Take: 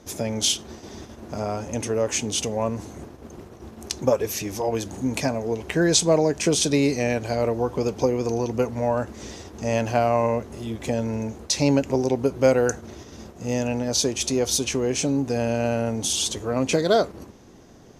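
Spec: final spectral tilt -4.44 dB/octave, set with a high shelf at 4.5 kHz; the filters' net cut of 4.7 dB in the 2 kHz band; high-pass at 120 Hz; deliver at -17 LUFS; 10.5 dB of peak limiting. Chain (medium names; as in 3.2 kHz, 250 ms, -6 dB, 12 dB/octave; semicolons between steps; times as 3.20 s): high-pass 120 Hz; peaking EQ 2 kHz -5.5 dB; treble shelf 4.5 kHz -4 dB; trim +10.5 dB; peak limiter -6.5 dBFS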